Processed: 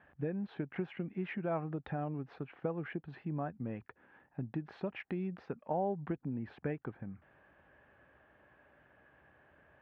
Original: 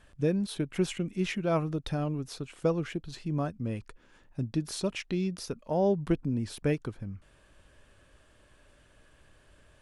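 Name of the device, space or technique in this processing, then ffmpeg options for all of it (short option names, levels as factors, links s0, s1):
bass amplifier: -af "acompressor=threshold=0.0282:ratio=4,highpass=f=75:w=0.5412,highpass=f=75:w=1.3066,equalizer=f=97:t=q:w=4:g=-9,equalizer=f=790:t=q:w=4:g=9,equalizer=f=1700:t=q:w=4:g=5,lowpass=f=2300:w=0.5412,lowpass=f=2300:w=1.3066,volume=0.708"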